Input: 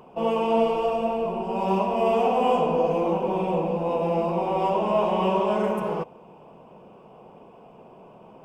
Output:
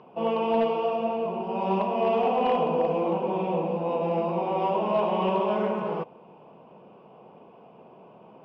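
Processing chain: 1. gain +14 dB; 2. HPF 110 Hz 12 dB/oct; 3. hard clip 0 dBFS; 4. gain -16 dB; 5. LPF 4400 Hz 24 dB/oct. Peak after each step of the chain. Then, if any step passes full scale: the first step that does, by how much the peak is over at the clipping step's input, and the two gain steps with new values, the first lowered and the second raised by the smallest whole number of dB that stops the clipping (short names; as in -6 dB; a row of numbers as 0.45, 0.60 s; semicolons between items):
+4.5, +4.0, 0.0, -16.0, -15.5 dBFS; step 1, 4.0 dB; step 1 +10 dB, step 4 -12 dB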